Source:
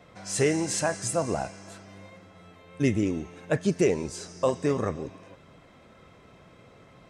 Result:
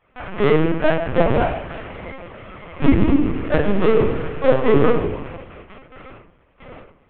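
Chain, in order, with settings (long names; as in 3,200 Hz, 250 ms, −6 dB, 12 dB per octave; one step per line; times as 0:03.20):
variable-slope delta modulation 16 kbit/s
noise gate with hold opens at −42 dBFS
parametric band 88 Hz −12 dB 1 octave
soft clipping −26.5 dBFS, distortion −9 dB
rectangular room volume 440 cubic metres, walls furnished, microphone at 8.8 metres
linear-prediction vocoder at 8 kHz pitch kept
0:02.90–0:04.99: feedback echo with a swinging delay time 106 ms, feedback 69%, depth 75 cents, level −12 dB
level +2.5 dB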